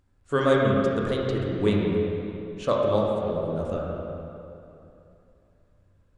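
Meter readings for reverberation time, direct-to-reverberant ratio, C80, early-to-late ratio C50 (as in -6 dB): 2.8 s, -3.0 dB, 0.0 dB, -1.0 dB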